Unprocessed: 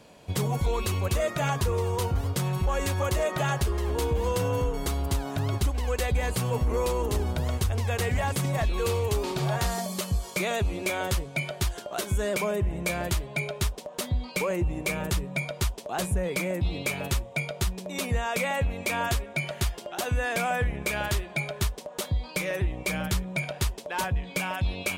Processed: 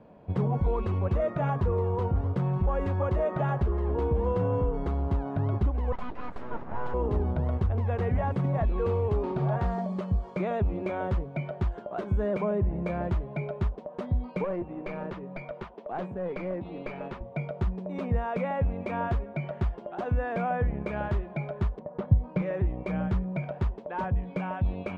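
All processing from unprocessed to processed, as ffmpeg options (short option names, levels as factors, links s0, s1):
-filter_complex "[0:a]asettb=1/sr,asplit=3[s0][s1][s2];[s0]atrim=end=5.924[s3];[s1]atrim=start=5.92:end=6.94,asetpts=PTS-STARTPTS,afade=t=in:d=0.004:c=qsin,afade=t=out:st=1.016:d=0.004:c=qsin,highpass=270,aeval=exprs='abs(val(0))':c=same[s4];[s2]atrim=start=6.936[s5];[s3][s4]acrossfade=d=0.004:c1=hsin:c2=qsin[s6];[s6][s5]acrossfade=d=0.004:c1=qsin:c2=hsin,asettb=1/sr,asplit=3[s7][s8][s9];[s7]atrim=end=14.444[s10];[s8]atrim=start=14.44:end=17.21,asetpts=PTS-STARTPTS,afade=t=in:d=0.004:c=qsin,afade=t=out:st=2.766:d=0.004:c=qsin,highpass=240,lowpass=3000,aemphasis=mode=production:type=75fm,aeval=exprs='clip(val(0),-1,0.0266)':c=same[s11];[s9]atrim=start=17.206[s12];[s10][s11]acrossfade=d=0.004:c1=hsin:c2=qsin[s13];[s13][s12]acrossfade=d=0.004:c1=qsin:c2=hsin,asettb=1/sr,asplit=3[s14][s15][s16];[s14]atrim=end=21.794[s17];[s15]atrim=start=21.79:end=22.42,asetpts=PTS-STARTPTS,afade=t=in:d=0.004:c=qsin,afade=t=out:st=0.626:d=0.004:c=qsin,equalizer=f=120:t=o:w=1.3:g=10,adynamicsmooth=sensitivity=5:basefreq=1200[s18];[s16]atrim=start=22.416[s19];[s17][s18]acrossfade=d=0.004:c1=hsin:c2=qsin[s20];[s20][s19]acrossfade=d=0.004:c1=qsin:c2=hsin,lowpass=1100,equalizer=f=200:w=2.9:g=4"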